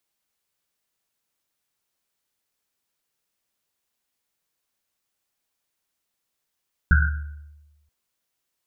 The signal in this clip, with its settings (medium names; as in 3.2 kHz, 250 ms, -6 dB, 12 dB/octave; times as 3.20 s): Risset drum length 0.98 s, pitch 74 Hz, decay 1.17 s, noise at 1.5 kHz, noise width 180 Hz, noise 35%